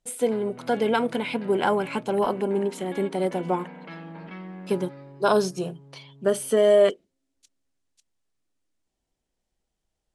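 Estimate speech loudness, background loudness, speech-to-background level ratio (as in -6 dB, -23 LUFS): -24.5 LUFS, -42.5 LUFS, 18.0 dB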